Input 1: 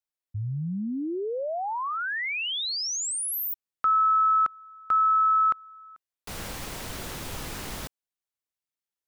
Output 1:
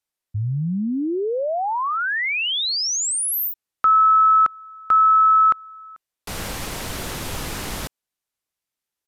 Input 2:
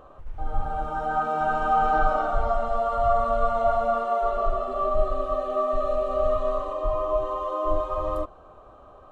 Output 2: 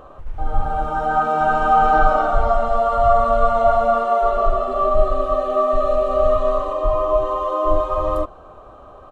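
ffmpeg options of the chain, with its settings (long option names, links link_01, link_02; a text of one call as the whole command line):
ffmpeg -i in.wav -af "aresample=32000,aresample=44100,volume=7dB" out.wav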